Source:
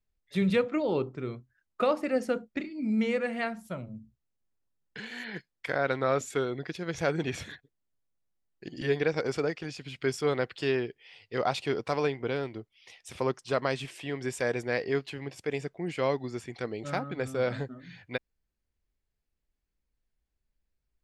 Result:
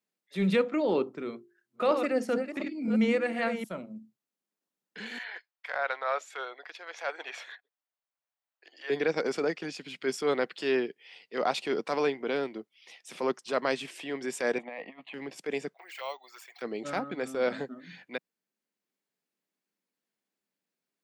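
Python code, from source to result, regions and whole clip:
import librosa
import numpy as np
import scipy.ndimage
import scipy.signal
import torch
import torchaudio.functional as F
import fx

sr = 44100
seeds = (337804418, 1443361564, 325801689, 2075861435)

y = fx.chain(x, sr, fx.reverse_delay(ms=349, wet_db=-8),
    fx.hum_notches(base_hz=50, count=8), at=(1.23, 3.64))
y = fx.chain(y, sr, fx.highpass(hz=650.0, slope=24),
    fx.peak_eq(hz=10000.0, db=-13.5, octaves=1.6), at=(5.18, 8.9))
y = fx.chain(y, sr, fx.over_compress(threshold_db=-32.0, ratio=-0.5),
    fx.bandpass_edges(low_hz=270.0, high_hz=2500.0),
    fx.fixed_phaser(hz=1500.0, stages=6), at=(14.58, 15.14))
y = fx.chain(y, sr, fx.env_flanger(rest_ms=8.7, full_db=-27.5),
    fx.highpass(hz=750.0, slope=24),
    fx.resample_bad(factor=2, down='none', up='hold'), at=(15.74, 16.62))
y = scipy.signal.sosfilt(scipy.signal.butter(6, 180.0, 'highpass', fs=sr, output='sos'), y)
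y = fx.transient(y, sr, attack_db=-6, sustain_db=-2)
y = y * librosa.db_to_amplitude(2.5)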